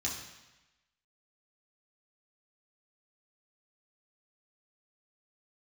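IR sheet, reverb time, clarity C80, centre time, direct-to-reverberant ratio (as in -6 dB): 1.0 s, 6.5 dB, 45 ms, -4.0 dB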